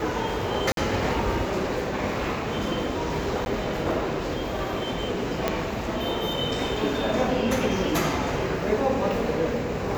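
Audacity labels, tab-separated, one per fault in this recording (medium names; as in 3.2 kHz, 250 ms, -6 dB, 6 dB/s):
0.720000	0.770000	dropout 52 ms
3.450000	3.460000	dropout 11 ms
5.480000	5.480000	pop -9 dBFS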